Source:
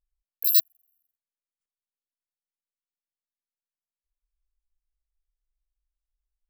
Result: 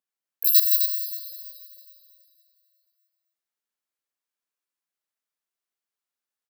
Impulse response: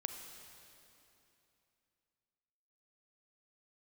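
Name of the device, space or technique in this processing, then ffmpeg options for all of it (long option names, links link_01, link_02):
stadium PA: -filter_complex "[0:a]highpass=frequency=190:width=0.5412,highpass=frequency=190:width=1.3066,equalizer=frequency=1500:width_type=o:width=0.92:gain=3.5,aecho=1:1:166.2|259.5:0.355|0.447[link_01];[1:a]atrim=start_sample=2205[link_02];[link_01][link_02]afir=irnorm=-1:irlink=0,volume=4dB"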